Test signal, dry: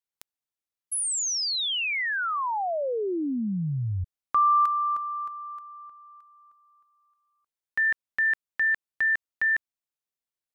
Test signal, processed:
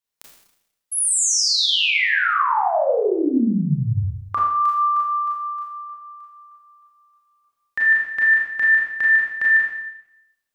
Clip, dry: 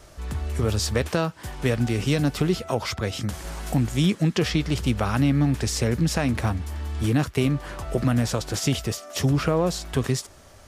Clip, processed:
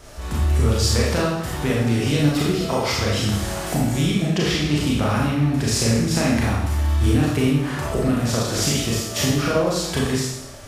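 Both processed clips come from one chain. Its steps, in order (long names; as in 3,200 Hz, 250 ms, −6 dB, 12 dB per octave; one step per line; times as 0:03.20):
downward compressor, threshold −24 dBFS
four-comb reverb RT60 0.84 s, combs from 27 ms, DRR −5 dB
level +3 dB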